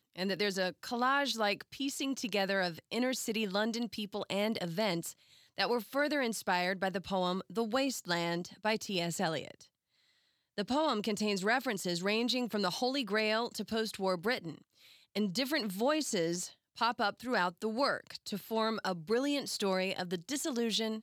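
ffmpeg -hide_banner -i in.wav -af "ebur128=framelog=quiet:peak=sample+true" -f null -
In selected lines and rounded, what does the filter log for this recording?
Integrated loudness:
  I:         -33.6 LUFS
  Threshold: -43.8 LUFS
Loudness range:
  LRA:         2.3 LU
  Threshold: -54.0 LUFS
  LRA low:   -35.0 LUFS
  LRA high:  -32.7 LUFS
Sample peak:
  Peak:      -16.3 dBFS
True peak:
  Peak:      -16.2 dBFS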